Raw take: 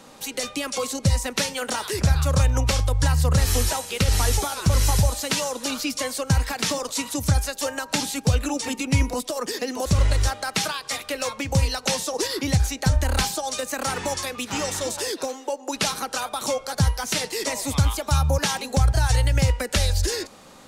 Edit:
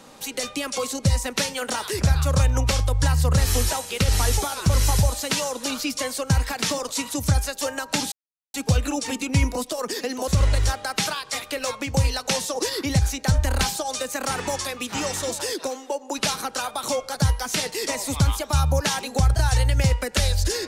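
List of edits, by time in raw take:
0:08.12: splice in silence 0.42 s

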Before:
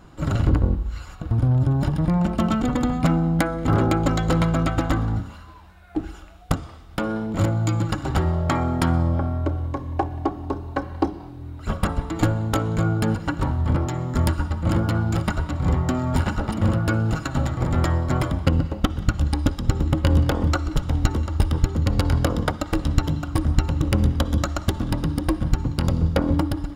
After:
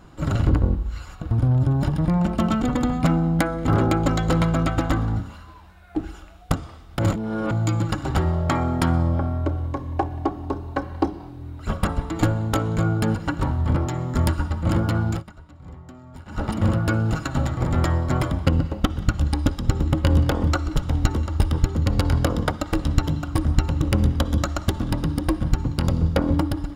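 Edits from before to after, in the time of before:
0:06.99–0:07.51: reverse
0:15.10–0:16.42: duck −20 dB, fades 0.14 s

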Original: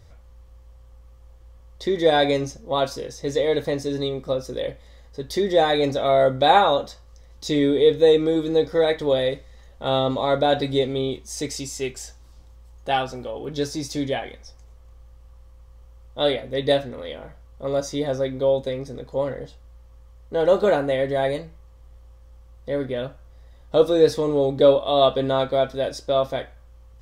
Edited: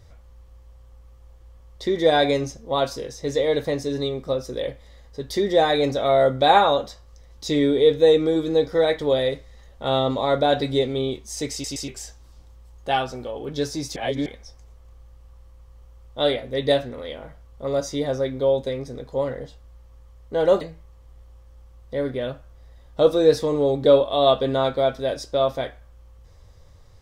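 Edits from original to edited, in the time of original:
0:11.52: stutter in place 0.12 s, 3 plays
0:13.96–0:14.26: reverse
0:20.61–0:21.36: remove

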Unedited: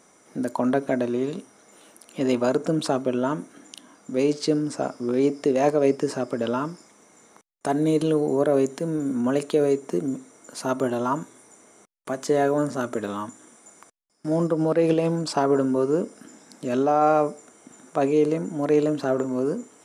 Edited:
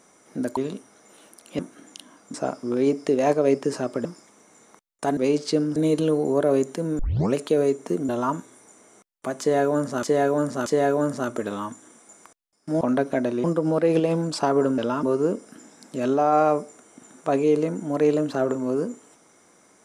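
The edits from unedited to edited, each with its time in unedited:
0:00.57–0:01.20: move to 0:14.38
0:02.22–0:03.37: remove
0:04.12–0:04.71: move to 0:07.79
0:06.42–0:06.67: move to 0:15.72
0:09.02: tape start 0.36 s
0:10.12–0:10.92: remove
0:12.23–0:12.86: repeat, 3 plays

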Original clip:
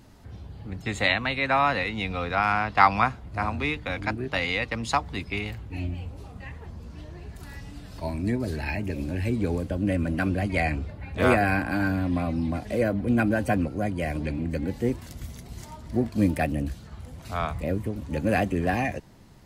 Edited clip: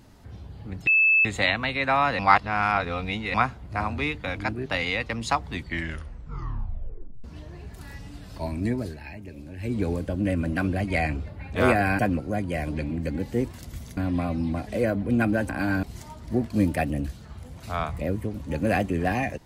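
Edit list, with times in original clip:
0:00.87: insert tone 2,620 Hz −15.5 dBFS 0.38 s
0:01.81–0:02.96: reverse
0:05.08: tape stop 1.78 s
0:08.40–0:09.38: duck −10.5 dB, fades 0.19 s
0:11.61–0:11.95: swap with 0:13.47–0:15.45

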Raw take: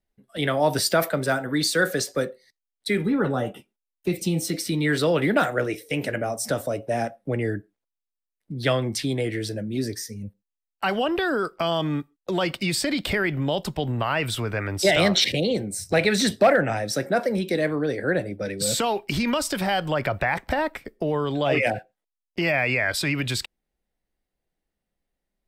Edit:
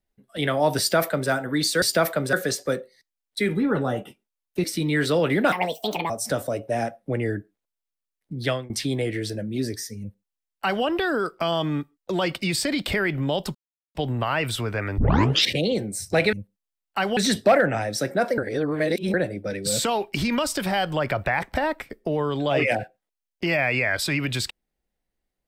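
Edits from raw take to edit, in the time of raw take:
0:00.79–0:01.30: duplicate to 0:01.82
0:04.13–0:04.56: remove
0:05.44–0:06.29: play speed 147%
0:08.62–0:08.89: fade out, to −23.5 dB
0:10.19–0:11.03: duplicate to 0:16.12
0:13.74: splice in silence 0.40 s
0:14.77: tape start 0.47 s
0:17.33–0:18.09: reverse

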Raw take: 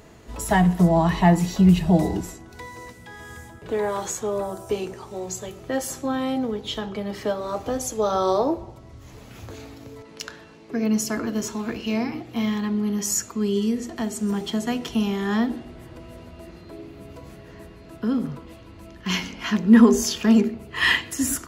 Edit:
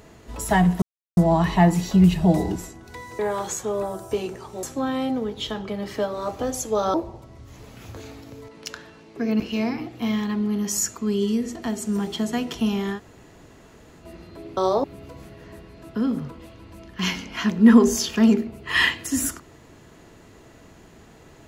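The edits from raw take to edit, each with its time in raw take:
0:00.82: splice in silence 0.35 s
0:02.84–0:03.77: remove
0:05.21–0:05.90: remove
0:08.21–0:08.48: move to 0:16.91
0:10.94–0:11.74: remove
0:15.29–0:16.37: fill with room tone, crossfade 0.10 s

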